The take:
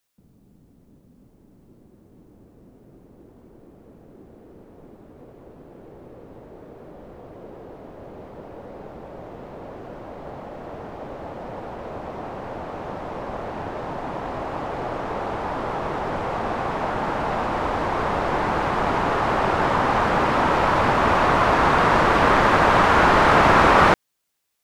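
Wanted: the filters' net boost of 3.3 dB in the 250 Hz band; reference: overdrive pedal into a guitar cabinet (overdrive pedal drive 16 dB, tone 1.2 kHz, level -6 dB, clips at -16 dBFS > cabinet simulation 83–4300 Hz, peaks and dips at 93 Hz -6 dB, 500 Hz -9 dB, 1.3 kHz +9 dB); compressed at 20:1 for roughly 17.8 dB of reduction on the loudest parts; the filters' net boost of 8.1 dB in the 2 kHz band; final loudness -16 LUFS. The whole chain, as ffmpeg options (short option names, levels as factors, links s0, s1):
-filter_complex "[0:a]equalizer=f=250:t=o:g=5,equalizer=f=2000:t=o:g=7.5,acompressor=threshold=0.0501:ratio=20,asplit=2[s0][s1];[s1]highpass=f=720:p=1,volume=6.31,asoftclip=type=tanh:threshold=0.158[s2];[s0][s2]amix=inputs=2:normalize=0,lowpass=f=1200:p=1,volume=0.501,highpass=83,equalizer=f=93:t=q:w=4:g=-6,equalizer=f=500:t=q:w=4:g=-9,equalizer=f=1300:t=q:w=4:g=9,lowpass=f=4300:w=0.5412,lowpass=f=4300:w=1.3066,volume=3.16"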